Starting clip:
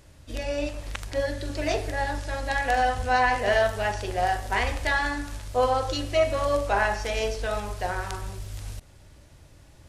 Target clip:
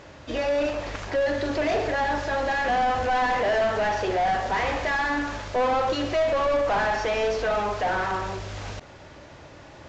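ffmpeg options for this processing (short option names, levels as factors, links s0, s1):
-filter_complex "[0:a]asplit=2[s0][s1];[s1]highpass=f=720:p=1,volume=31.6,asoftclip=type=tanh:threshold=0.335[s2];[s0][s2]amix=inputs=2:normalize=0,lowpass=f=1100:p=1,volume=0.501,volume=0.562" -ar 16000 -c:a pcm_alaw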